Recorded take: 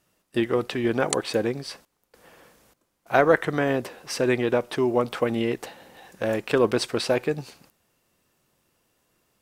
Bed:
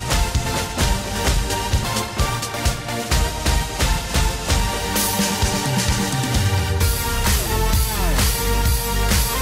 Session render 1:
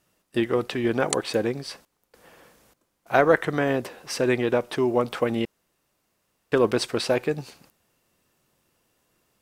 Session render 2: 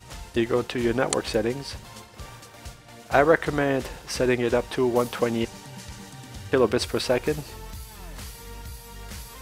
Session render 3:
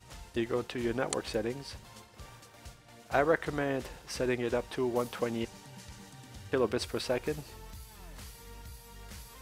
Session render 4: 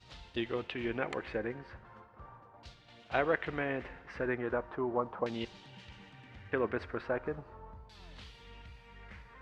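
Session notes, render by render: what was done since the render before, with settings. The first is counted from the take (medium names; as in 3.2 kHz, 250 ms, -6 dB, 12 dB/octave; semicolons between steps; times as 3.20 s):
5.45–6.52 s: room tone
add bed -21 dB
trim -8.5 dB
feedback comb 88 Hz, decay 1.6 s, harmonics all, mix 40%; LFO low-pass saw down 0.38 Hz 950–4200 Hz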